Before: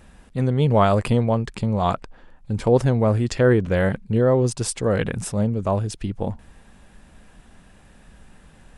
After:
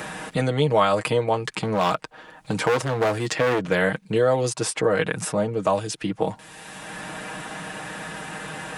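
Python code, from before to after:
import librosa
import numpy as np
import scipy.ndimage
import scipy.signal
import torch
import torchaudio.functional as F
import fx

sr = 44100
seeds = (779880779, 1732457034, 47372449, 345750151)

y = x + 0.67 * np.pad(x, (int(6.4 * sr / 1000.0), 0))[:len(x)]
y = fx.clip_hard(y, sr, threshold_db=-17.0, at=(1.61, 3.63))
y = scipy.signal.sosfilt(scipy.signal.butter(2, 120.0, 'highpass', fs=sr, output='sos'), y)
y = fx.low_shelf(y, sr, hz=360.0, db=-12.0)
y = fx.band_squash(y, sr, depth_pct=70)
y = y * librosa.db_to_amplitude(4.0)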